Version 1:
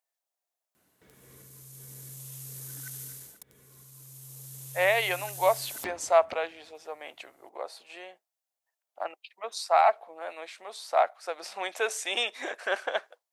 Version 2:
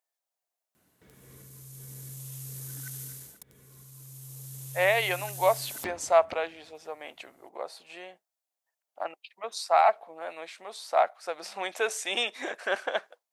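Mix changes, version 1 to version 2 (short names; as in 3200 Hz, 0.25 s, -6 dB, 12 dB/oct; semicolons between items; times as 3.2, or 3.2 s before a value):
background: add HPF 240 Hz 12 dB/oct; master: remove HPF 310 Hz 12 dB/oct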